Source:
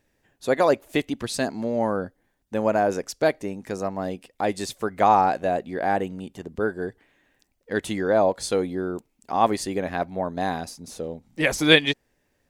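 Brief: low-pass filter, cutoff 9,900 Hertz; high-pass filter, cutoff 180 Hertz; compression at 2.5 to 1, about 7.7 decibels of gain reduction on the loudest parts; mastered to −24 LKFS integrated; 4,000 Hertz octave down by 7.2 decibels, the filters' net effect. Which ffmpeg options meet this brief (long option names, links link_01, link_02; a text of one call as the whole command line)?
ffmpeg -i in.wav -af "highpass=180,lowpass=9900,equalizer=frequency=4000:width_type=o:gain=-9,acompressor=threshold=-24dB:ratio=2.5,volume=6dB" out.wav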